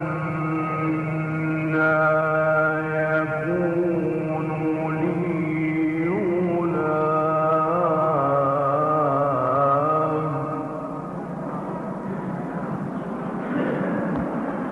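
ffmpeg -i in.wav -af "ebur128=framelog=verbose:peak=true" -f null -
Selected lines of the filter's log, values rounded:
Integrated loudness:
  I:         -23.1 LUFS
  Threshold: -33.1 LUFS
Loudness range:
  LRA:         7.1 LU
  Threshold: -42.8 LUFS
  LRA low:   -27.9 LUFS
  LRA high:  -20.8 LUFS
True peak:
  Peak:       -9.9 dBFS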